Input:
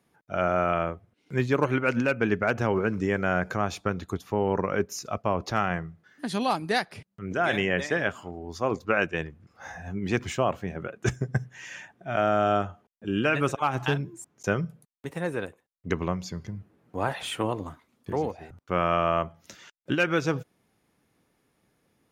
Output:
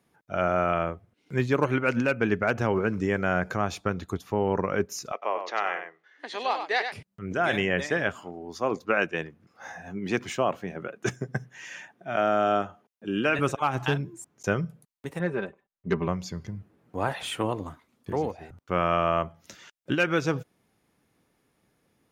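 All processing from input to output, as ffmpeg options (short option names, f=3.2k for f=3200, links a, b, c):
-filter_complex "[0:a]asettb=1/sr,asplit=3[a][b][c];[a]atrim=end=5.124[d];[b]atrim=start=5.12:end=6.92,asetpts=PTS-STARTPTS,afade=t=in:d=0.004:c=qsin,afade=t=out:st=1.796:d=0.004:c=qsin,highpass=f=420:w=0.5412,highpass=f=420:w=1.3066,equalizer=f=620:t=q:w=4:g=-3,equalizer=f=1.4k:t=q:w=4:g=-4,equalizer=f=2k:t=q:w=4:g=5,equalizer=f=5k:t=q:w=4:g=-7,lowpass=f=5.8k:w=0.5412,lowpass=f=5.8k:w=1.3066,aecho=1:1:98:0.422,atrim=end_sample=79380[e];[c]atrim=start=6.916[f];[d][e]acrossfade=d=0.004:c1=hsin:c2=qsin[g];[g][f]acrossfade=d=0.004:c1=qsin:c2=hsin,asettb=1/sr,asplit=3[h][i][j];[h]atrim=end=8.194[k];[i]atrim=start=8.19:end=13.39,asetpts=PTS-STARTPTS,afade=t=in:d=0.004:c=qsin,afade=t=out:st=5.196:d=0.004:c=qsin,highpass=170,bandreject=f=7.6k:w=13[l];[j]atrim=start=13.386[m];[k][l]acrossfade=d=0.004:c1=hsin:c2=qsin[n];[n][m]acrossfade=d=0.004:c1=qsin:c2=hsin,asettb=1/sr,asplit=3[o][p][q];[o]atrim=end=15.194[r];[p]atrim=start=15.19:end=16.08,asetpts=PTS-STARTPTS,afade=t=in:d=0.004:c=qsin,afade=t=out:st=0.886:d=0.004:c=qsin,aecho=1:1:5.1:0.73,atrim=end_sample=39249,asoftclip=type=hard:threshold=-13.5dB,adynamicsmooth=sensitivity=0.5:basefreq=3.1k[s];[q]atrim=start=16.076[t];[r][s]acrossfade=d=0.004:c1=hsin:c2=qsin[u];[u][t]acrossfade=d=0.004:c1=qsin:c2=hsin"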